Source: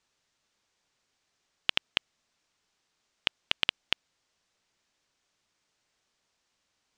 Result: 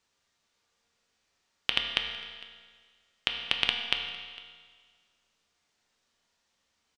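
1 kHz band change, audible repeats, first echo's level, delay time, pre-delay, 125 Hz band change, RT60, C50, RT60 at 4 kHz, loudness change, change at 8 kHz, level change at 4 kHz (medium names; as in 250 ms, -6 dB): +2.5 dB, 1, -21.5 dB, 455 ms, 4 ms, +1.5 dB, 1.7 s, 5.0 dB, 1.6 s, +1.0 dB, +0.5 dB, +2.0 dB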